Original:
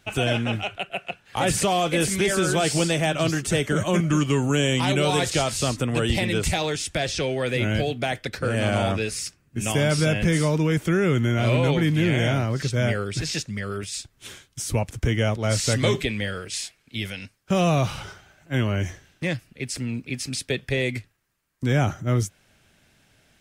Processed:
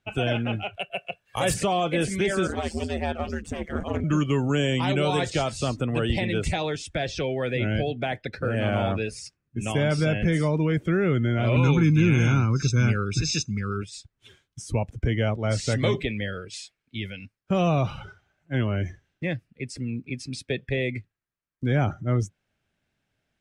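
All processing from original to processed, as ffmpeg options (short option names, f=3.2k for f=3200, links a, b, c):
-filter_complex "[0:a]asettb=1/sr,asplit=3[a][b][c];[a]atrim=end=0.734[d];[b]atrim=start=0.73:end=1.54,asetpts=PTS-STARTPTS,afade=t=in:d=0.004:c=qsin,afade=t=out:st=0.806:d=0.004:c=qsin,aemphasis=mode=production:type=50fm,aecho=1:1:1.8:0.38,atrim=end_sample=35721,asoftclip=type=hard:threshold=-13dB[e];[c]atrim=start=1.536[f];[d][e]acrossfade=d=0.004:c1=hsin:c2=qsin[g];[g][f]acrossfade=d=0.004:c1=qsin:c2=hsin,asettb=1/sr,asplit=3[h][i][j];[h]atrim=end=2.474[k];[i]atrim=start=2.47:end=4.04,asetpts=PTS-STARTPTS,afade=t=in:d=0.004:c=qsin,afade=t=out:st=1.566:d=0.004:c=qsin,aeval=exprs='clip(val(0),-1,0.0355)':c=same,aeval=exprs='val(0)*sin(2*PI*78*n/s)':c=same[l];[j]atrim=start=4.036[m];[k][l]acrossfade=d=0.004:c1=hsin:c2=qsin[n];[n][m]acrossfade=d=0.004:c1=qsin:c2=hsin,asettb=1/sr,asplit=3[o][p][q];[o]atrim=end=11.564[r];[p]atrim=start=11.56:end=13.83,asetpts=PTS-STARTPTS,afade=t=in:d=0.004:c=qsin,afade=t=out:st=2.266:d=0.004:c=qsin,equalizer=f=6.1k:w=2.1:g=10,aecho=1:1:0.8:0.82,atrim=end_sample=100107[s];[q]atrim=start=13.826[t];[r][s]acrossfade=d=0.004:c1=hsin:c2=qsin[u];[u][t]acrossfade=d=0.004:c1=qsin:c2=hsin,afftdn=nr=14:nf=-36,aemphasis=mode=reproduction:type=cd,volume=-2dB"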